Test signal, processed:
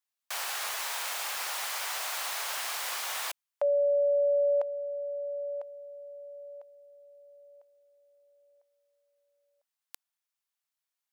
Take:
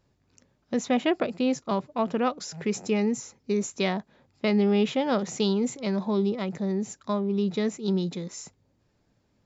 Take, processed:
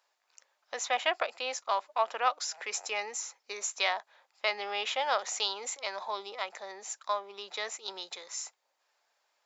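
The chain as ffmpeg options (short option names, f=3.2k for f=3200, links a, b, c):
-af "highpass=f=720:w=0.5412,highpass=f=720:w=1.3066,volume=2.5dB"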